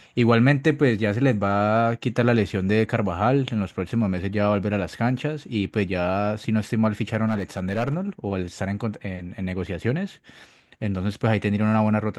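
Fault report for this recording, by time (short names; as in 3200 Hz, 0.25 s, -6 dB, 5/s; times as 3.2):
7.26–7.96 clipped -18.5 dBFS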